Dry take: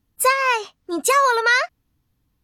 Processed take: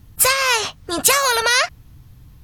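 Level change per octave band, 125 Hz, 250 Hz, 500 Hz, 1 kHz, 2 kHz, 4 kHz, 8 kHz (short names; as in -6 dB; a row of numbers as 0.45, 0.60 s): n/a, -1.0 dB, -0.5 dB, -2.0 dB, +0.5 dB, +9.0 dB, +9.0 dB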